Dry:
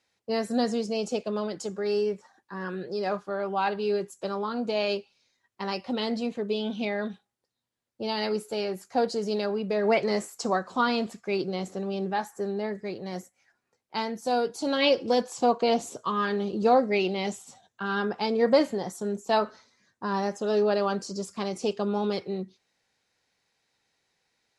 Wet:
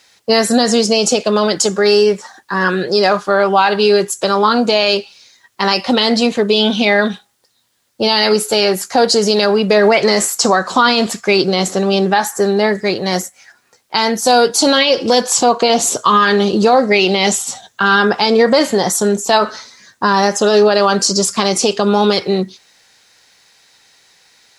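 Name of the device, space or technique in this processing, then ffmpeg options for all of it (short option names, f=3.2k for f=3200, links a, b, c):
mastering chain: -af "equalizer=f=2.4k:t=o:w=0.53:g=-3,acompressor=threshold=-26dB:ratio=2,tiltshelf=f=970:g=-5.5,alimiter=level_in=22dB:limit=-1dB:release=50:level=0:latency=1,volume=-1dB"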